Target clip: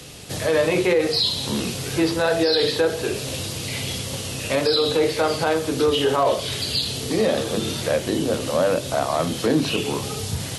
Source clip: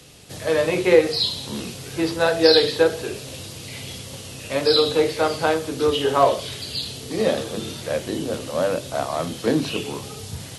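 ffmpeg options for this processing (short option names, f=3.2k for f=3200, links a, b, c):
-filter_complex "[0:a]asplit=2[a][b];[b]acompressor=threshold=-29dB:ratio=6,volume=2dB[c];[a][c]amix=inputs=2:normalize=0,alimiter=limit=-10.5dB:level=0:latency=1:release=23"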